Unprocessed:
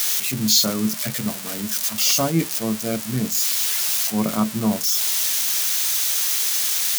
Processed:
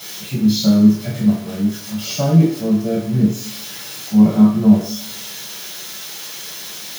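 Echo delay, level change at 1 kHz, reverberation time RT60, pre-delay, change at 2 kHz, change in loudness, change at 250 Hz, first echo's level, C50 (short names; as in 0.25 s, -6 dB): none, -1.0 dB, 0.60 s, 3 ms, -4.0 dB, +3.0 dB, +11.0 dB, none, 4.0 dB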